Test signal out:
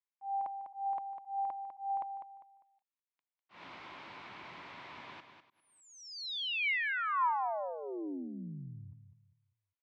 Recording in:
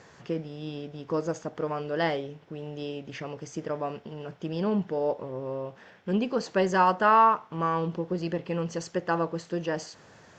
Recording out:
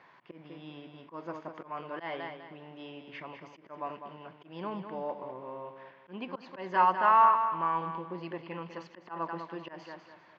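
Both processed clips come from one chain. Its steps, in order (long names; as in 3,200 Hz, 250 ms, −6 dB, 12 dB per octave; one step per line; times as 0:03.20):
repeating echo 200 ms, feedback 31%, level −8.5 dB
volume swells 141 ms
loudspeaker in its box 210–3,800 Hz, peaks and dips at 220 Hz −5 dB, 460 Hz −9 dB, 1,000 Hz +9 dB, 2,200 Hz +6 dB
level −6.5 dB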